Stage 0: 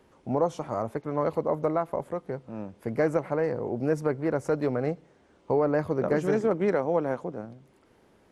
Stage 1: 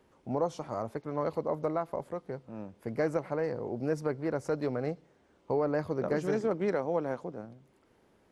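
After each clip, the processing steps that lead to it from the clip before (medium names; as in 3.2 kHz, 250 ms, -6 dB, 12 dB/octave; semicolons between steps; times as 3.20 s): dynamic bell 4.7 kHz, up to +6 dB, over -60 dBFS, Q 1.8; trim -5 dB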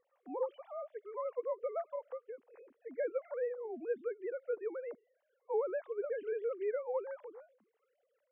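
formants replaced by sine waves; trim -6.5 dB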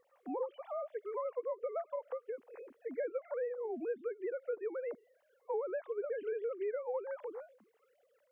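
compression 3:1, threshold -44 dBFS, peak gain reduction 11.5 dB; trim +7 dB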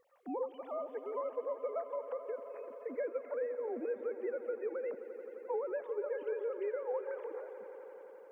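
echo with a slow build-up 87 ms, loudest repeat 5, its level -17 dB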